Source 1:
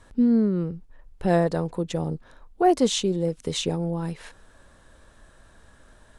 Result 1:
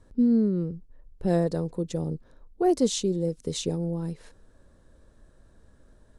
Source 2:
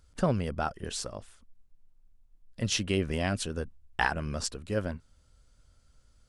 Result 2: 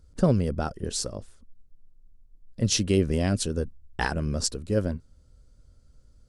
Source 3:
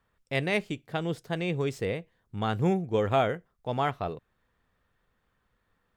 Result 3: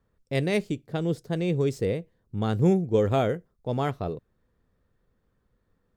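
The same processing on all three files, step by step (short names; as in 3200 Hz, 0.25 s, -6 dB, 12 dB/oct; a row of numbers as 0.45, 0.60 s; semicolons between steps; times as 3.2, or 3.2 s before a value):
band shelf 1500 Hz -8 dB 2.6 oct; mismatched tape noise reduction decoder only; match loudness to -27 LUFS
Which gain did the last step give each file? -1.5, +6.5, +5.0 dB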